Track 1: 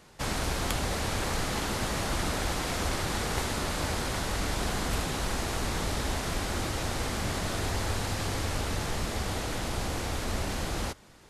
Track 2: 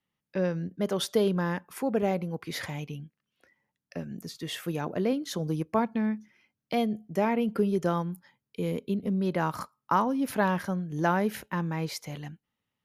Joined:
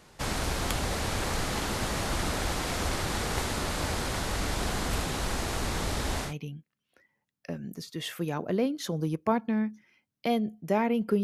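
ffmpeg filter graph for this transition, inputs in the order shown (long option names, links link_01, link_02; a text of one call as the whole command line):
ffmpeg -i cue0.wav -i cue1.wav -filter_complex "[0:a]apad=whole_dur=11.23,atrim=end=11.23,atrim=end=6.34,asetpts=PTS-STARTPTS[link_01];[1:a]atrim=start=2.69:end=7.7,asetpts=PTS-STARTPTS[link_02];[link_01][link_02]acrossfade=duration=0.12:curve1=tri:curve2=tri" out.wav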